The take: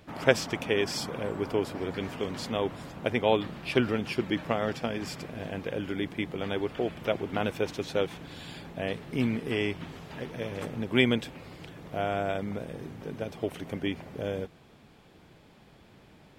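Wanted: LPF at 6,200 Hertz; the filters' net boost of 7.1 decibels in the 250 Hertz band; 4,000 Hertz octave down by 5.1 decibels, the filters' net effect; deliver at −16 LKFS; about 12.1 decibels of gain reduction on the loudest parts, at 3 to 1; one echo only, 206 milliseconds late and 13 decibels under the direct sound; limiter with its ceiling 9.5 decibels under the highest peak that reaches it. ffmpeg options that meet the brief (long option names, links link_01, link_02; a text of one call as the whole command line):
ffmpeg -i in.wav -af "lowpass=6200,equalizer=frequency=250:width_type=o:gain=8.5,equalizer=frequency=4000:width_type=o:gain=-6.5,acompressor=threshold=-30dB:ratio=3,alimiter=level_in=0.5dB:limit=-24dB:level=0:latency=1,volume=-0.5dB,aecho=1:1:206:0.224,volume=20.5dB" out.wav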